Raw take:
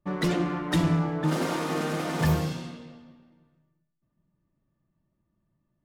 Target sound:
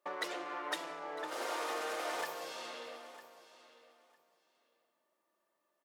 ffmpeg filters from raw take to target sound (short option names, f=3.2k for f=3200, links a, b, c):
-af "acompressor=threshold=-38dB:ratio=6,highpass=f=470:w=0.5412,highpass=f=470:w=1.3066,aecho=1:1:954|1908:0.158|0.0269,volume=6dB"